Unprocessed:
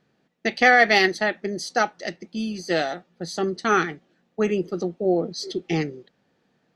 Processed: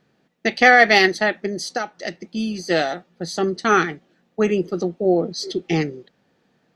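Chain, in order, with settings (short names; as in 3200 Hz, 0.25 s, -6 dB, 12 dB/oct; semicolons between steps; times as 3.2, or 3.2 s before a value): 1.46–2.27 compressor 6:1, threshold -25 dBFS, peak gain reduction 9.5 dB; gain +3.5 dB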